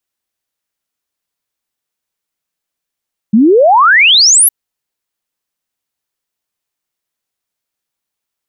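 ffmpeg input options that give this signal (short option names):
-f lavfi -i "aevalsrc='0.668*clip(min(t,1.16-t)/0.01,0,1)*sin(2*PI*200*1.16/log(12000/200)*(exp(log(12000/200)*t/1.16)-1))':d=1.16:s=44100"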